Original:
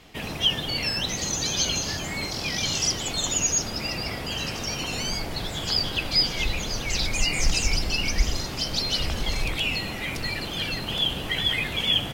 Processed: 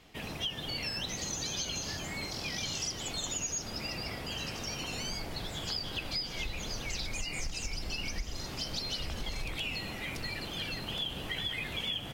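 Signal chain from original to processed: compression 10:1, threshold -24 dBFS, peak gain reduction 10.5 dB; trim -7.5 dB

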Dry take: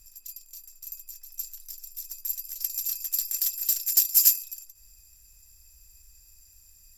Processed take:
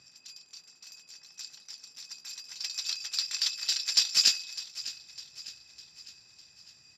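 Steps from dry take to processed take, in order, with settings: elliptic band-pass 140–4700 Hz, stop band 70 dB; dynamic bell 3.7 kHz, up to +5 dB, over -53 dBFS, Q 1.3; feedback delay 604 ms, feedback 51%, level -15.5 dB; trim +9 dB

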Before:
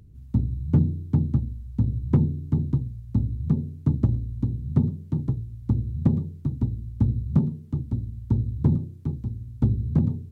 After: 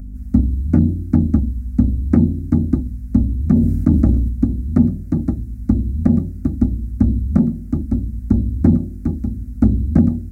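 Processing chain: hum 50 Hz, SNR 19 dB; static phaser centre 650 Hz, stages 8; loudness maximiser +15.5 dB; 3.37–4.29 s: decay stretcher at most 33 dB/s; trim -1 dB

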